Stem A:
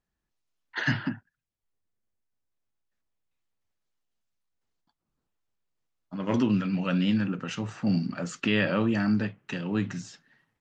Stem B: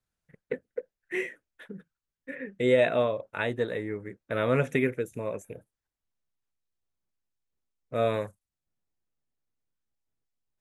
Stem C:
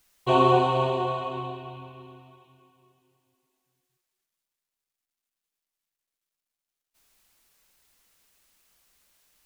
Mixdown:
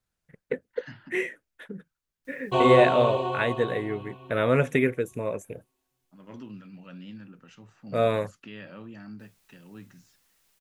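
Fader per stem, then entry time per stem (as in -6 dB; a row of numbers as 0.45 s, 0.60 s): -18.0 dB, +3.0 dB, -2.0 dB; 0.00 s, 0.00 s, 2.25 s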